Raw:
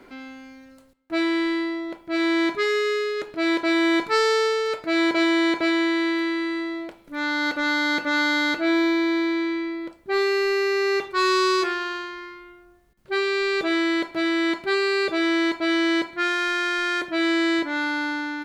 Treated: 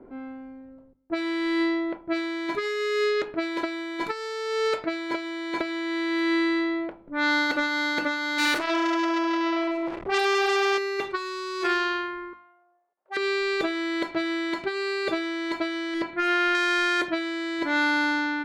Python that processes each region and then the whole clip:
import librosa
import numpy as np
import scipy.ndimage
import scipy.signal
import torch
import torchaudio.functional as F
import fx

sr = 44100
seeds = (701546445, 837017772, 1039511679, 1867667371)

y = fx.chain(x, sr, fx.zero_step(step_db=-27.0),
    fx.transformer_sat(knee_hz=2600.0), at=(8.38, 10.78))
y = fx.chain(y, sr, fx.self_delay(depth_ms=0.57),
    fx.cheby1_highpass(hz=690.0, order=3), at=(12.33, 13.17))
y = fx.chain(y, sr, fx.lowpass(hz=2500.0, slope=6),
    fx.overload_stage(gain_db=18.0),
    fx.doppler_dist(depth_ms=0.14), at=(15.94, 16.55))
y = fx.env_lowpass(y, sr, base_hz=560.0, full_db=-20.5)
y = fx.hum_notches(y, sr, base_hz=50, count=6)
y = fx.over_compress(y, sr, threshold_db=-25.0, ratio=-0.5)